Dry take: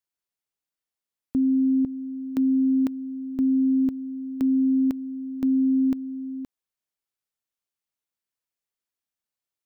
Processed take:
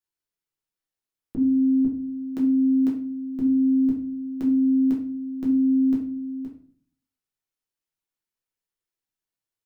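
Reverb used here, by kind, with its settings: shoebox room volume 44 m³, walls mixed, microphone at 0.97 m; gain -6 dB

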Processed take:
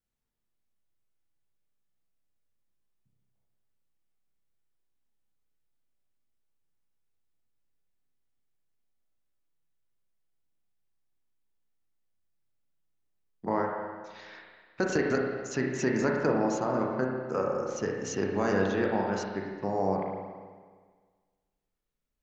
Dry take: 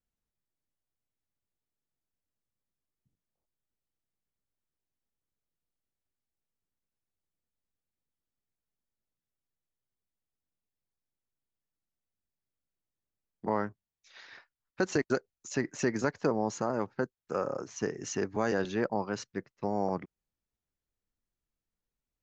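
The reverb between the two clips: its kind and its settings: spring tank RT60 1.6 s, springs 31/50 ms, chirp 30 ms, DRR -0.5 dB

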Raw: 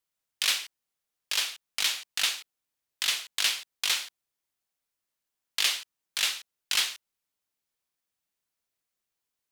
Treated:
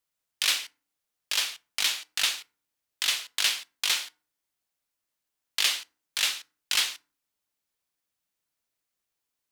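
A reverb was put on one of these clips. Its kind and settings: FDN reverb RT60 0.38 s, low-frequency decay 1.5×, high-frequency decay 0.6×, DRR 15.5 dB; gain +1 dB

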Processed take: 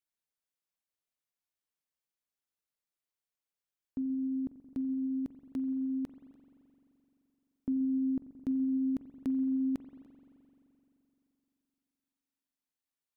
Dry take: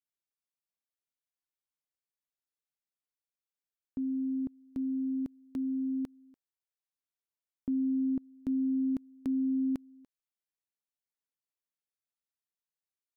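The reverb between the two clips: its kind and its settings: spring tank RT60 3.2 s, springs 43 ms, chirp 75 ms, DRR 9 dB

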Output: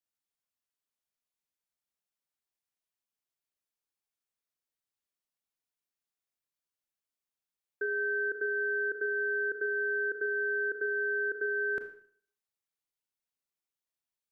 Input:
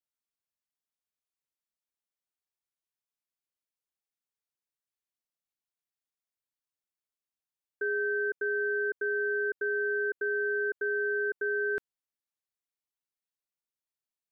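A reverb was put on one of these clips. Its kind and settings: Schroeder reverb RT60 0.55 s, combs from 26 ms, DRR 7 dB; gain -1 dB

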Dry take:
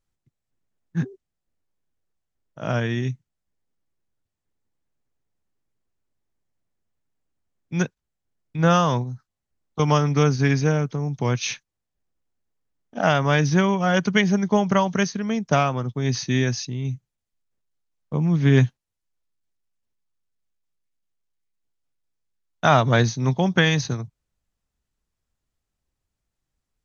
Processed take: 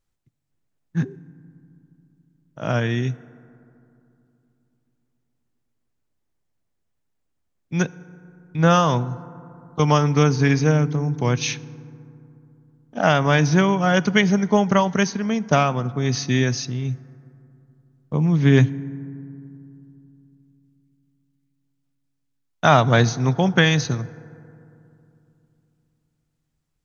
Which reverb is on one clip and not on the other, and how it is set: FDN reverb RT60 2.8 s, low-frequency decay 1.35×, high-frequency decay 0.35×, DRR 18 dB; gain +2 dB

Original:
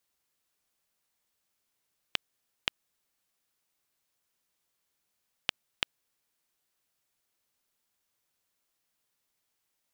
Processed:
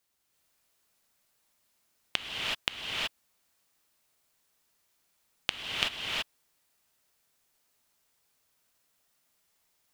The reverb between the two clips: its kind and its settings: non-linear reverb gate 0.4 s rising, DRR -4 dB; gain +1.5 dB

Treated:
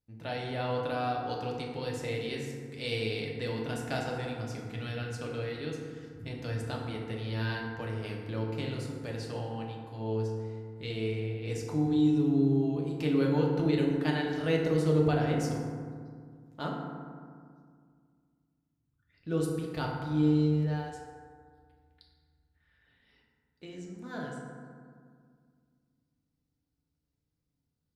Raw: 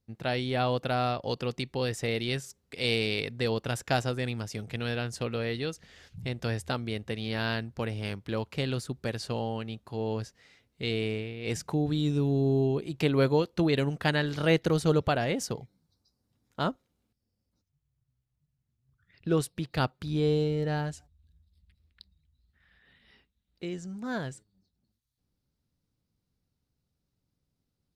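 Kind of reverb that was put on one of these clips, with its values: FDN reverb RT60 2 s, low-frequency decay 1.35×, high-frequency decay 0.4×, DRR -2 dB; gain -9 dB

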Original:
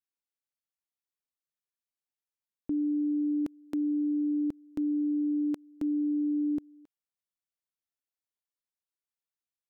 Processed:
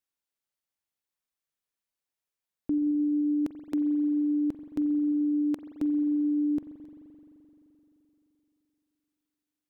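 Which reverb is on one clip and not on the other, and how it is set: spring tank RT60 3.6 s, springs 43 ms, chirp 25 ms, DRR 7.5 dB; gain +3 dB

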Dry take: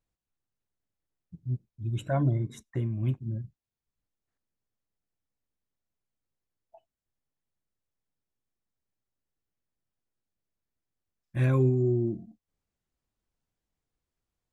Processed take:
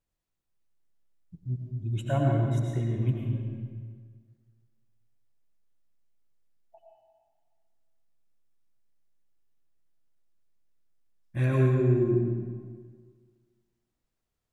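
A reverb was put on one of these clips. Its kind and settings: digital reverb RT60 1.7 s, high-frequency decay 0.8×, pre-delay 60 ms, DRR -1 dB; gain -1 dB

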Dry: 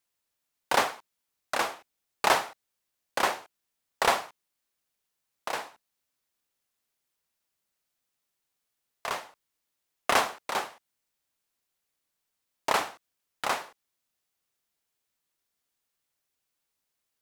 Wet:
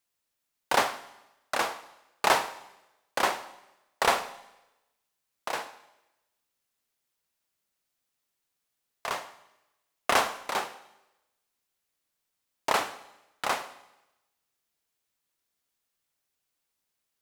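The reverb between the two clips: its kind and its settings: Schroeder reverb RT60 0.97 s, combs from 33 ms, DRR 13.5 dB

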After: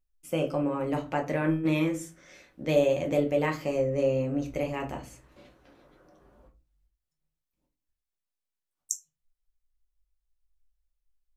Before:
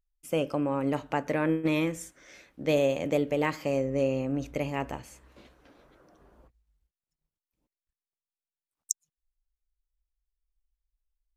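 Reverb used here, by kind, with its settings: shoebox room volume 120 m³, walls furnished, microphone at 1 m; gain -2.5 dB

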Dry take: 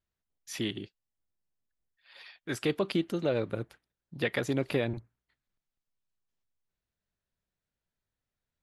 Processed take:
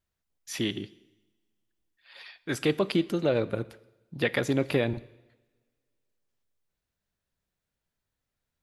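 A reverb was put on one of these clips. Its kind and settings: two-slope reverb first 0.99 s, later 2.9 s, from -27 dB, DRR 17.5 dB; gain +3.5 dB

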